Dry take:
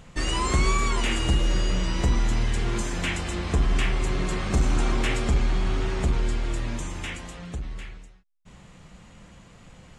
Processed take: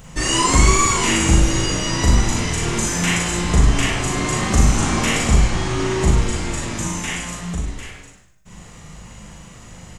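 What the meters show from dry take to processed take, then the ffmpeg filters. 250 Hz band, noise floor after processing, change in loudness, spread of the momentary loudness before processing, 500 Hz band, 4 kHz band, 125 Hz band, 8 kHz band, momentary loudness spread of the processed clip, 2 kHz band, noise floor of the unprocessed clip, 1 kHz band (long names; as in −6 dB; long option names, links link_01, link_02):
+9.0 dB, −42 dBFS, +8.0 dB, 11 LU, +7.5 dB, +9.0 dB, +7.5 dB, +15.5 dB, 10 LU, +8.5 dB, −51 dBFS, +9.0 dB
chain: -filter_complex "[0:a]asplit=2[link_01][link_02];[link_02]adelay=39,volume=-4.5dB[link_03];[link_01][link_03]amix=inputs=2:normalize=0,asplit=2[link_04][link_05];[link_05]asplit=4[link_06][link_07][link_08][link_09];[link_06]adelay=101,afreqshift=-58,volume=-9dB[link_10];[link_07]adelay=202,afreqshift=-116,volume=-17dB[link_11];[link_08]adelay=303,afreqshift=-174,volume=-24.9dB[link_12];[link_09]adelay=404,afreqshift=-232,volume=-32.9dB[link_13];[link_10][link_11][link_12][link_13]amix=inputs=4:normalize=0[link_14];[link_04][link_14]amix=inputs=2:normalize=0,aexciter=amount=2.1:drive=5.9:freq=5500,asplit=2[link_15][link_16];[link_16]aecho=0:1:40|58:0.631|0.531[link_17];[link_15][link_17]amix=inputs=2:normalize=0,volume=4.5dB"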